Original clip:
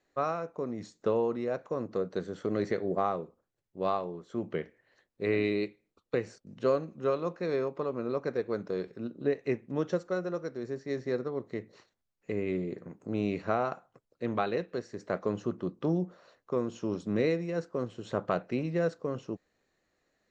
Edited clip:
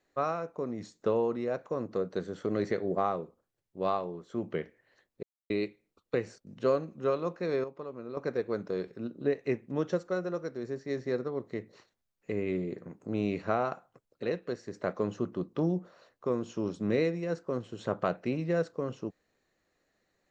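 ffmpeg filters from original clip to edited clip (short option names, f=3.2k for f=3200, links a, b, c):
-filter_complex "[0:a]asplit=6[a][b][c][d][e][f];[a]atrim=end=5.23,asetpts=PTS-STARTPTS,afade=t=out:st=5.226:d=0.004:c=hsin[g];[b]atrim=start=5.23:end=5.5,asetpts=PTS-STARTPTS,volume=0[h];[c]atrim=start=5.5:end=7.642,asetpts=PTS-STARTPTS,afade=t=in:d=0.004:c=hsin[i];[d]atrim=start=7.638:end=8.172,asetpts=PTS-STARTPTS,volume=-8dB[j];[e]atrim=start=8.168:end=14.232[k];[f]atrim=start=14.488[l];[g][h][i]concat=n=3:v=0:a=1[m];[m][j]acrossfade=d=0.004:c1=hsin:c2=hsin[n];[n][k]acrossfade=d=0.004:c1=hsin:c2=hsin[o];[o][l]acrossfade=d=0.004:c1=hsin:c2=hsin"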